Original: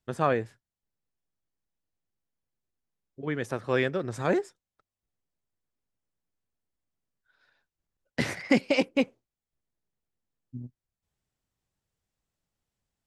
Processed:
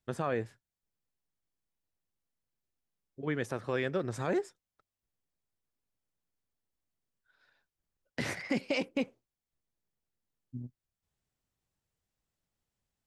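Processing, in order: limiter -19 dBFS, peak gain reduction 9 dB; gain -2 dB

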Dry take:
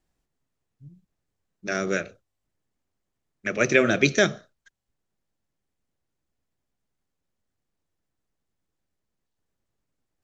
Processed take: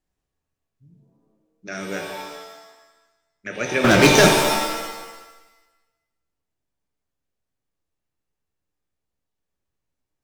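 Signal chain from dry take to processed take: 3.84–4.28 sample leveller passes 5; shimmer reverb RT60 1.1 s, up +7 st, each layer -2 dB, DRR 3 dB; gain -5 dB

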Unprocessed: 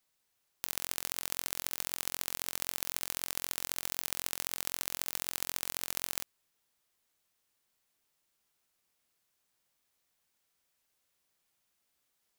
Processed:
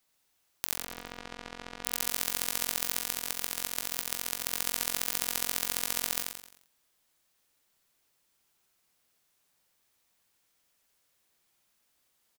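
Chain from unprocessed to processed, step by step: 0.77–1.84 tape spacing loss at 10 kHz 31 dB; 3.02–4.46 AM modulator 38 Hz, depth 45%; feedback echo 87 ms, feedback 43%, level -4 dB; gain +3.5 dB

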